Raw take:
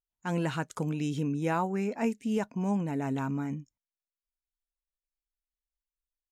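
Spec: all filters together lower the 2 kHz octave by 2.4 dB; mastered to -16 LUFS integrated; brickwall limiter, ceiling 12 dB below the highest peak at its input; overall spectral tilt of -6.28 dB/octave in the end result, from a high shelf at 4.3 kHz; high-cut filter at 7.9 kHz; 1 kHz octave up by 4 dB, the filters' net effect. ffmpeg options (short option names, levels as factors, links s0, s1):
-af "lowpass=7900,equalizer=f=1000:t=o:g=6,equalizer=f=2000:t=o:g=-7.5,highshelf=f=4300:g=6.5,volume=10.6,alimiter=limit=0.398:level=0:latency=1"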